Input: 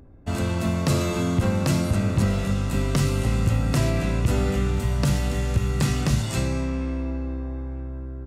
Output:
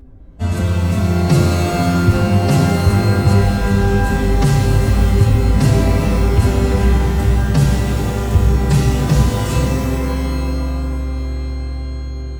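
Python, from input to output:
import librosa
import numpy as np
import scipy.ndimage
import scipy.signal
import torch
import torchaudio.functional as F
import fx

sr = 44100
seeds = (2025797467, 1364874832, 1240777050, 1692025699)

y = fx.low_shelf(x, sr, hz=130.0, db=10.0)
y = fx.stretch_vocoder(y, sr, factor=1.5)
y = fx.rev_shimmer(y, sr, seeds[0], rt60_s=1.8, semitones=12, shimmer_db=-2, drr_db=6.0)
y = F.gain(torch.from_numpy(y), 2.5).numpy()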